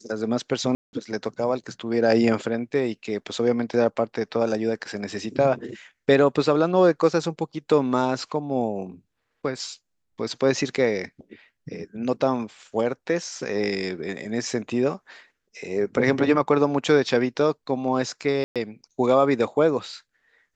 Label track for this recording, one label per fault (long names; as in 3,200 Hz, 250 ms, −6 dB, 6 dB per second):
0.750000	0.930000	drop-out 181 ms
18.440000	18.560000	drop-out 117 ms